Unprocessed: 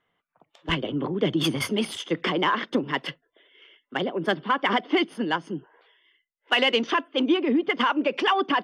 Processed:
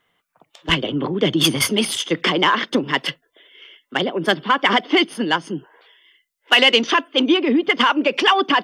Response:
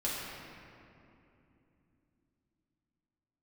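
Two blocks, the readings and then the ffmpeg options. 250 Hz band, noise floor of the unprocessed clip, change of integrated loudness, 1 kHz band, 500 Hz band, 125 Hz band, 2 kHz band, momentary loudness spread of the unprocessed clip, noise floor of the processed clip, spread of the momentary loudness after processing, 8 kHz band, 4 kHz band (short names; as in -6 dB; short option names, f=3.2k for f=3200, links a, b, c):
+5.0 dB, -79 dBFS, +7.0 dB, +6.0 dB, +5.0 dB, +5.0 dB, +8.0 dB, 8 LU, -73 dBFS, 9 LU, +13.5 dB, +10.0 dB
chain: -af "highshelf=f=3.1k:g=10,volume=5dB"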